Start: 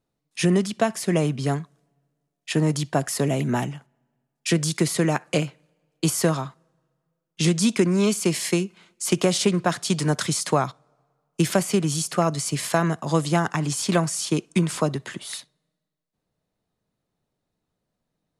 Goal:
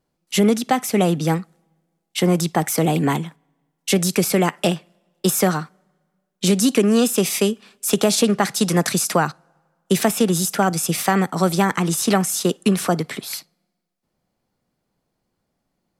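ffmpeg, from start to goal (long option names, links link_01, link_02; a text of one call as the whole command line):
ffmpeg -i in.wav -filter_complex "[0:a]asplit=2[link_01][link_02];[link_02]alimiter=limit=-14.5dB:level=0:latency=1:release=30,volume=-2.5dB[link_03];[link_01][link_03]amix=inputs=2:normalize=0,asetrate=50715,aresample=44100" out.wav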